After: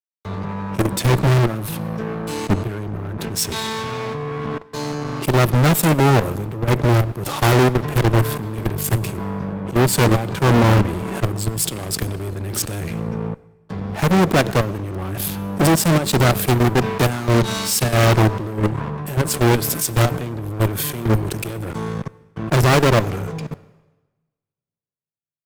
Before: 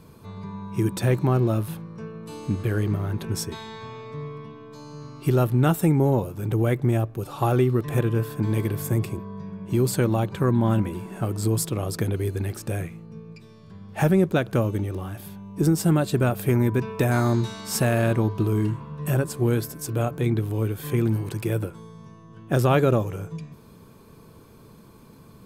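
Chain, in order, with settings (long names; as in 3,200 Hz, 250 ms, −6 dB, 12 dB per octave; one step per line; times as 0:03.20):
amplitude tremolo 1.6 Hz, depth 36%
output level in coarse steps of 23 dB
fuzz pedal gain 42 dB, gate −50 dBFS
on a send at −18.5 dB: convolution reverb RT60 2.6 s, pre-delay 85 ms
on the sum: multiband upward and downward expander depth 70%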